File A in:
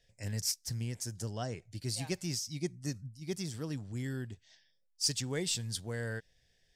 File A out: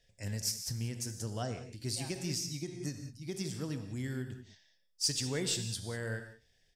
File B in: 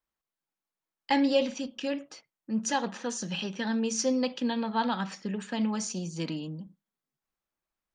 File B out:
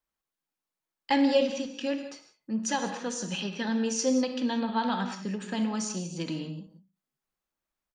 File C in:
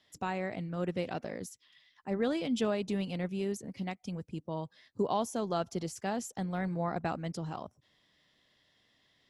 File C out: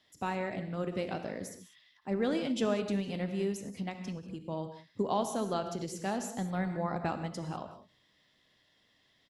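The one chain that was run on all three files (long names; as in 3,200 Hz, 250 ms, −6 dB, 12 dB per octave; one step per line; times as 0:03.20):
far-end echo of a speakerphone 80 ms, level −23 dB
reverb whose tail is shaped and stops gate 220 ms flat, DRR 7.5 dB
every ending faded ahead of time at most 170 dB per second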